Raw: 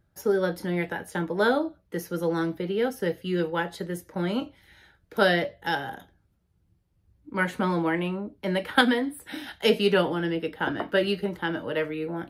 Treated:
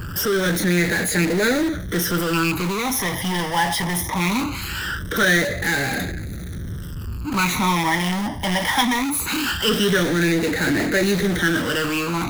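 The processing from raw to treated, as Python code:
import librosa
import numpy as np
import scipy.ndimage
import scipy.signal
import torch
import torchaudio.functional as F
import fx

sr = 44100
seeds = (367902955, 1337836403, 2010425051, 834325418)

p1 = fx.rattle_buzz(x, sr, strikes_db=-30.0, level_db=-22.0)
p2 = fx.power_curve(p1, sr, exponent=0.35)
p3 = fx.phaser_stages(p2, sr, stages=12, low_hz=430.0, high_hz=1000.0, hz=0.21, feedback_pct=35)
p4 = (np.mod(10.0 ** (16.5 / 20.0) * p3 + 1.0, 2.0) - 1.0) / 10.0 ** (16.5 / 20.0)
p5 = p3 + F.gain(torch.from_numpy(p4), -11.0).numpy()
p6 = fx.low_shelf(p5, sr, hz=140.0, db=-5.0)
y = F.gain(torch.from_numpy(p6), -2.5).numpy()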